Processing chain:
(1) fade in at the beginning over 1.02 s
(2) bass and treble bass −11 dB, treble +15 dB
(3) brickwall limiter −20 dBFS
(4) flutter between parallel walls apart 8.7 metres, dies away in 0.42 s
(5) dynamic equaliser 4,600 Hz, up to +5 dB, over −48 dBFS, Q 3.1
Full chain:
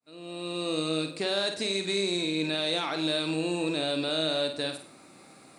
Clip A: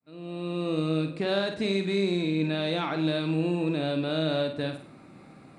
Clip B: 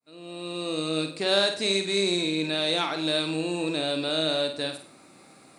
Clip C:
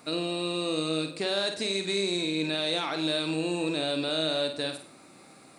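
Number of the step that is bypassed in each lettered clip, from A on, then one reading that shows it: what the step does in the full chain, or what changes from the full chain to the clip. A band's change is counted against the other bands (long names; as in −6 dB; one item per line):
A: 2, 125 Hz band +8.0 dB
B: 3, change in crest factor +4.0 dB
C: 1, change in momentary loudness spread −3 LU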